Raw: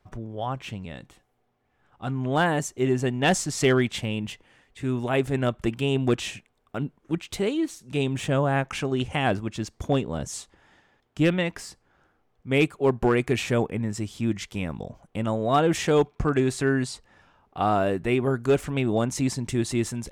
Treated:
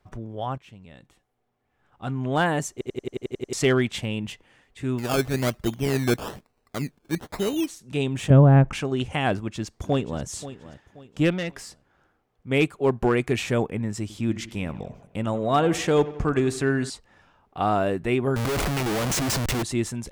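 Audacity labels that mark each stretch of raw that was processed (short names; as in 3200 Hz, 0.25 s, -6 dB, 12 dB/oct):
0.580000	2.130000	fade in, from -15 dB
2.720000	2.720000	stutter in place 0.09 s, 9 plays
4.980000	7.670000	decimation with a swept rate 18×, swing 60% 1.1 Hz
8.300000	8.730000	tilt -4.5 dB/oct
9.330000	10.240000	echo throw 0.53 s, feedback 35%, level -14.5 dB
11.300000	12.510000	tube stage drive 23 dB, bias 0.3
14.010000	16.900000	dark delay 87 ms, feedback 55%, low-pass 2800 Hz, level -16 dB
18.360000	19.630000	Schmitt trigger flips at -39 dBFS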